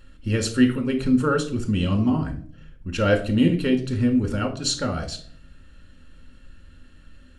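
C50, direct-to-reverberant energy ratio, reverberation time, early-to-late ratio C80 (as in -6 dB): 12.5 dB, 3.0 dB, 0.50 s, 17.0 dB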